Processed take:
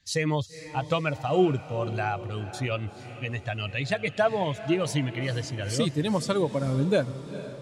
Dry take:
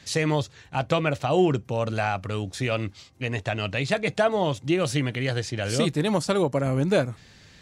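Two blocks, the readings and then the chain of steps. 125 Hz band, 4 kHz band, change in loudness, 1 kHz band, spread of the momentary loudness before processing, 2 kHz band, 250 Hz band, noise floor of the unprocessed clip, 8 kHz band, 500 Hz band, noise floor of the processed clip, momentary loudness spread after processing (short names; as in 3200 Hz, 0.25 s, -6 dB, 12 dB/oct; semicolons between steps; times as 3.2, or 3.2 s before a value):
-2.0 dB, -3.0 dB, -2.5 dB, -2.5 dB, 8 LU, -3.0 dB, -2.5 dB, -52 dBFS, -2.5 dB, -2.5 dB, -43 dBFS, 9 LU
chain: per-bin expansion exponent 1.5; diffused feedback echo 0.456 s, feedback 54%, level -13.5 dB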